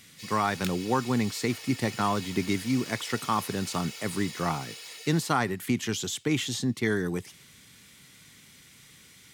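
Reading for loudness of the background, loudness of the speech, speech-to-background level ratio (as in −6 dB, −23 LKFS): −40.0 LKFS, −29.0 LKFS, 11.0 dB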